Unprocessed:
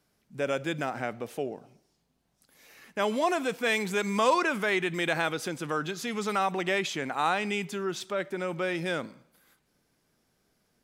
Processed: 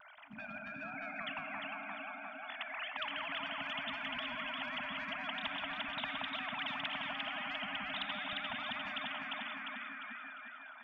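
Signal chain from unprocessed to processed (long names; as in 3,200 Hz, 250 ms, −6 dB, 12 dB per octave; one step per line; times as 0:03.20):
three sine waves on the formant tracks
high-pass filter 200 Hz 12 dB per octave
parametric band 590 Hz −6.5 dB 0.66 octaves
downward compressor 3 to 1, threshold −36 dBFS, peak gain reduction 15 dB
brickwall limiter −34 dBFS, peak gain reduction 10 dB
brick-wall band-stop 280–600 Hz
convolution reverb RT60 2.2 s, pre-delay 3 ms, DRR 14.5 dB
pitch vibrato 0.39 Hz 8.9 cents
delay that swaps between a low-pass and a high-pass 175 ms, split 1,300 Hz, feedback 63%, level −3 dB
every bin compressed towards the loudest bin 10 to 1
level +5 dB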